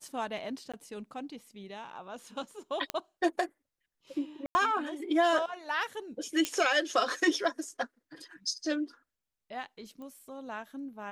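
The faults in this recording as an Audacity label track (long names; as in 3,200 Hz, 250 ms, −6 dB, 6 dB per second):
0.720000	0.740000	drop-out 16 ms
2.900000	2.900000	click −15 dBFS
4.460000	4.550000	drop-out 90 ms
6.450000	6.450000	click −13 dBFS
10.020000	10.020000	click −35 dBFS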